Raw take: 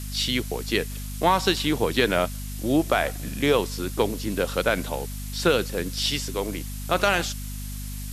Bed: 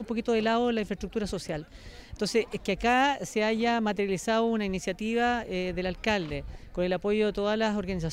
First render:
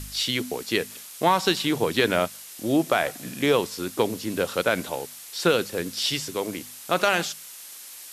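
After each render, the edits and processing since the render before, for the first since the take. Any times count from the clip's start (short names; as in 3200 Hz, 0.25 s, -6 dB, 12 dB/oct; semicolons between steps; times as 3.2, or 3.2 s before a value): de-hum 50 Hz, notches 5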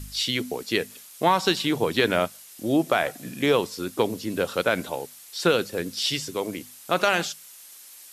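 denoiser 6 dB, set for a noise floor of -42 dBFS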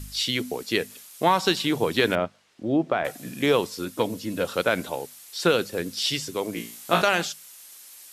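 2.15–3.05 tape spacing loss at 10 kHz 29 dB; 3.85–4.45 notch comb 390 Hz; 6.54–7.02 flutter echo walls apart 3 m, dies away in 0.38 s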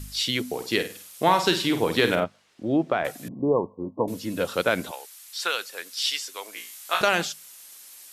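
0.46–2.24 flutter echo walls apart 8.5 m, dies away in 0.35 s; 3.28–4.08 Chebyshev low-pass 1100 Hz, order 8; 4.91–7.01 HPF 1000 Hz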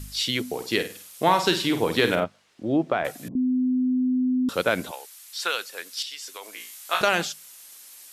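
3.35–4.49 bleep 254 Hz -19.5 dBFS; 6.02–6.73 compressor 10:1, threshold -32 dBFS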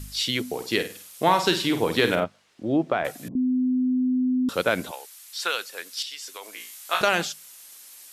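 nothing audible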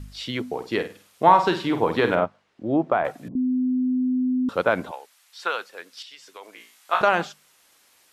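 dynamic EQ 980 Hz, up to +8 dB, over -38 dBFS, Q 1.1; LPF 1500 Hz 6 dB/oct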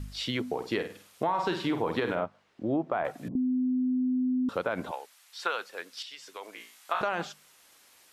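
limiter -11.5 dBFS, peak gain reduction 8.5 dB; compressor 2.5:1, threshold -28 dBFS, peak gain reduction 8 dB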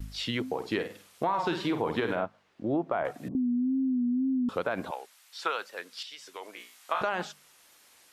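wow and flutter 81 cents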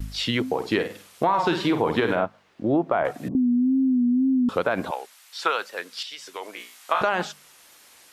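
gain +7 dB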